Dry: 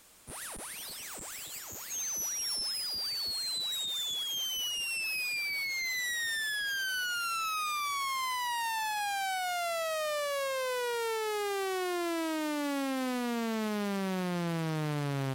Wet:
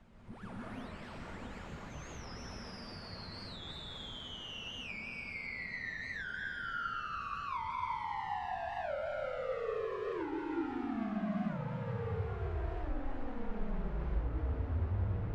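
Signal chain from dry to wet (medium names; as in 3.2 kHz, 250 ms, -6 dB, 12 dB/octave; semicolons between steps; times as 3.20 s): low-pass 2 kHz 12 dB/octave; bass shelf 460 Hz +11 dB; compression 2:1, threshold -47 dBFS, peak gain reduction 13.5 dB; band noise 83–250 Hz -60 dBFS; flange 0.19 Hz, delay 1 ms, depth 6.1 ms, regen +70%; frequency shift -250 Hz; plate-style reverb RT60 2.7 s, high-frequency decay 0.65×, pre-delay 115 ms, DRR -4.5 dB; warped record 45 rpm, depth 160 cents; trim +1 dB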